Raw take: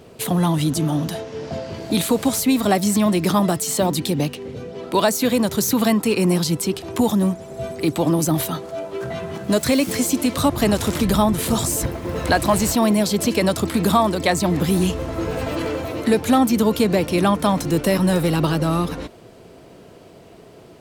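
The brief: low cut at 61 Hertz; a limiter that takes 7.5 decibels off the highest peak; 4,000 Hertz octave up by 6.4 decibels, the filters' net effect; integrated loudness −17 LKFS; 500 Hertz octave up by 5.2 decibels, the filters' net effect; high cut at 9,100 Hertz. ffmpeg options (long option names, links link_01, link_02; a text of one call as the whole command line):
ffmpeg -i in.wav -af "highpass=61,lowpass=9100,equalizer=frequency=500:width_type=o:gain=6.5,equalizer=frequency=4000:width_type=o:gain=7.5,volume=2dB,alimiter=limit=-5.5dB:level=0:latency=1" out.wav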